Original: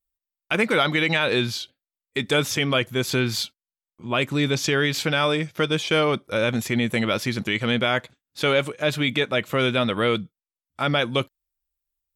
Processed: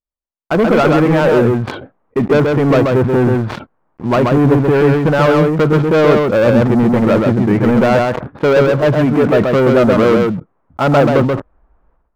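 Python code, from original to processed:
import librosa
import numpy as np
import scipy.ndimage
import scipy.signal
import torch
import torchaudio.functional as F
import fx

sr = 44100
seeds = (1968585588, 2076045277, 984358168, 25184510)

y = scipy.signal.sosfilt(scipy.signal.butter(4, 1200.0, 'lowpass', fs=sr, output='sos'), x)
y = fx.low_shelf(y, sr, hz=84.0, db=-6.5)
y = fx.leveller(y, sr, passes=3)
y = y + 10.0 ** (-3.5 / 20.0) * np.pad(y, (int(132 * sr / 1000.0), 0))[:len(y)]
y = fx.sustainer(y, sr, db_per_s=66.0)
y = y * librosa.db_to_amplitude(5.5)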